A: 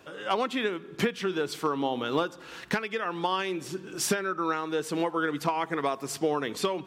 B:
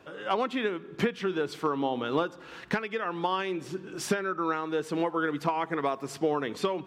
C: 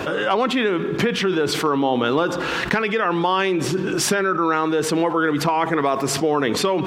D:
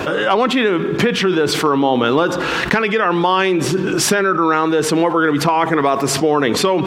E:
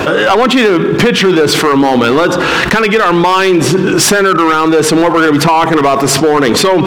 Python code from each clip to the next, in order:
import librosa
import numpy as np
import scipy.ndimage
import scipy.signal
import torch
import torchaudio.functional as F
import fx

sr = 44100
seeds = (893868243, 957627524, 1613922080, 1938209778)

y1 = fx.high_shelf(x, sr, hz=4500.0, db=-10.5)
y2 = fx.env_flatten(y1, sr, amount_pct=70)
y2 = y2 * librosa.db_to_amplitude(5.0)
y3 = fx.wow_flutter(y2, sr, seeds[0], rate_hz=2.1, depth_cents=21.0)
y3 = y3 * librosa.db_to_amplitude(4.5)
y4 = np.clip(y3, -10.0 ** (-12.0 / 20.0), 10.0 ** (-12.0 / 20.0))
y4 = y4 * librosa.db_to_amplitude(8.0)